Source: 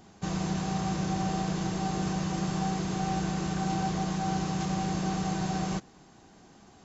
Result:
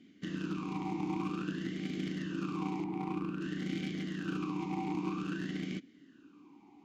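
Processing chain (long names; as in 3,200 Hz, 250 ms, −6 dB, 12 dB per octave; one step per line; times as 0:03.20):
0:02.84–0:03.41: running median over 15 samples
in parallel at −9 dB: bit reduction 4 bits
on the sum: formant filter swept between two vowels i-u 0.52 Hz
level +7.5 dB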